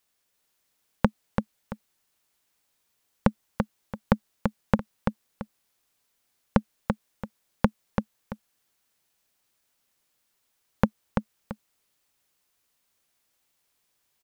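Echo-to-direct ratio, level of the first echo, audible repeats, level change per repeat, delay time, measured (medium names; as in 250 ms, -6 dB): -4.5 dB, -5.0 dB, 2, -11.0 dB, 337 ms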